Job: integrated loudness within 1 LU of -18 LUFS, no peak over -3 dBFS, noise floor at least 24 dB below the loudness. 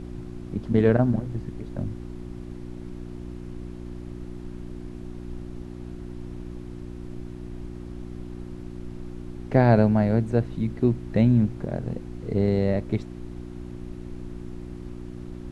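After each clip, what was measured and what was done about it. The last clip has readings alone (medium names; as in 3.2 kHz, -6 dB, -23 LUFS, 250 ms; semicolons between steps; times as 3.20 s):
hum 60 Hz; highest harmonic 360 Hz; hum level -35 dBFS; noise floor -38 dBFS; noise floor target -48 dBFS; loudness -24.0 LUFS; peak level -5.5 dBFS; loudness target -18.0 LUFS
-> de-hum 60 Hz, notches 6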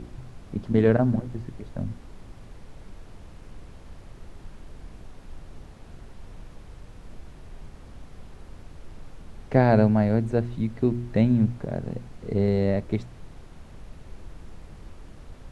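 hum not found; noise floor -47 dBFS; noise floor target -49 dBFS
-> noise print and reduce 6 dB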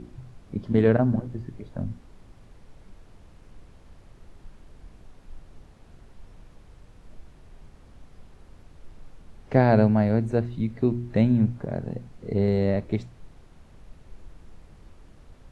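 noise floor -52 dBFS; loudness -24.5 LUFS; peak level -5.0 dBFS; loudness target -18.0 LUFS
-> trim +6.5 dB; peak limiter -3 dBFS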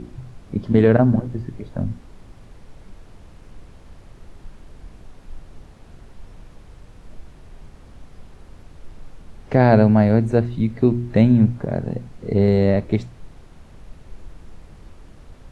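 loudness -18.5 LUFS; peak level -3.0 dBFS; noise floor -46 dBFS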